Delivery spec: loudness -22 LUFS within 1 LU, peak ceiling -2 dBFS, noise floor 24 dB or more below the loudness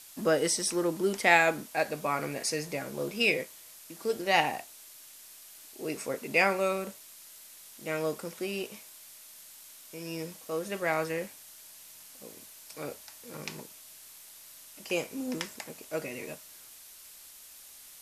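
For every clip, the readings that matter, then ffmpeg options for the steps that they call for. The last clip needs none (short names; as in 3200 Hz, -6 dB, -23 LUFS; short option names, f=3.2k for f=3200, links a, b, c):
noise floor -51 dBFS; noise floor target -55 dBFS; loudness -30.5 LUFS; peak -7.0 dBFS; loudness target -22.0 LUFS
-> -af "afftdn=nr=6:nf=-51"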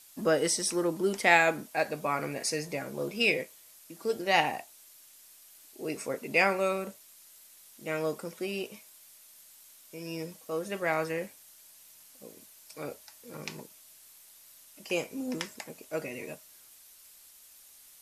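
noise floor -56 dBFS; loudness -30.5 LUFS; peak -7.0 dBFS; loudness target -22.0 LUFS
-> -af "volume=8.5dB,alimiter=limit=-2dB:level=0:latency=1"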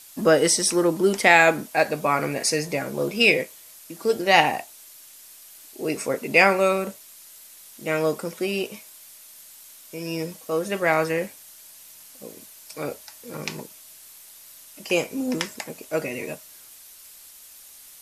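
loudness -22.5 LUFS; peak -2.0 dBFS; noise floor -47 dBFS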